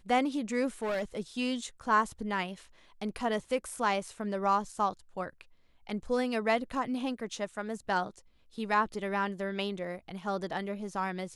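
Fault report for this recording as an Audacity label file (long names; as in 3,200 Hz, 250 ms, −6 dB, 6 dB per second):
0.820000	1.040000	clipping −28.5 dBFS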